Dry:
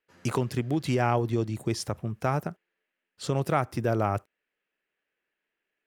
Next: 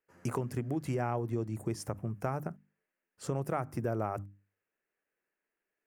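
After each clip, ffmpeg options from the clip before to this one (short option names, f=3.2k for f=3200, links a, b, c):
-af "equalizer=f=3.7k:w=1.3:g=-15,bandreject=f=50:t=h:w=6,bandreject=f=100:t=h:w=6,bandreject=f=150:t=h:w=6,bandreject=f=200:t=h:w=6,bandreject=f=250:t=h:w=6,bandreject=f=300:t=h:w=6,acompressor=threshold=-31dB:ratio=2,volume=-1.5dB"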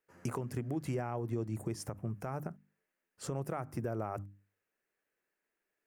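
-af "alimiter=level_in=2.5dB:limit=-24dB:level=0:latency=1:release=262,volume=-2.5dB,volume=1dB"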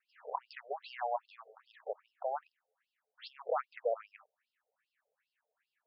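-af "afftfilt=real='re*between(b*sr/1024,550*pow(3900/550,0.5+0.5*sin(2*PI*2.5*pts/sr))/1.41,550*pow(3900/550,0.5+0.5*sin(2*PI*2.5*pts/sr))*1.41)':imag='im*between(b*sr/1024,550*pow(3900/550,0.5+0.5*sin(2*PI*2.5*pts/sr))/1.41,550*pow(3900/550,0.5+0.5*sin(2*PI*2.5*pts/sr))*1.41)':win_size=1024:overlap=0.75,volume=8.5dB"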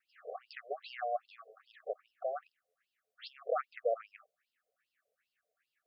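-af "asuperstop=centerf=930:order=12:qfactor=2.6,volume=1dB"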